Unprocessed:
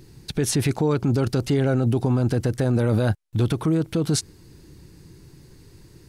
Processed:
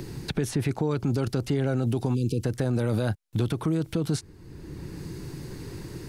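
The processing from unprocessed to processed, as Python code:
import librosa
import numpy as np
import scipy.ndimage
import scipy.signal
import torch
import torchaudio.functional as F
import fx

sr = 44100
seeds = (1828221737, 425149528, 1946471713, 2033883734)

y = fx.spec_erase(x, sr, start_s=2.14, length_s=0.29, low_hz=510.0, high_hz=2300.0)
y = fx.band_squash(y, sr, depth_pct=70)
y = F.gain(torch.from_numpy(y), -5.0).numpy()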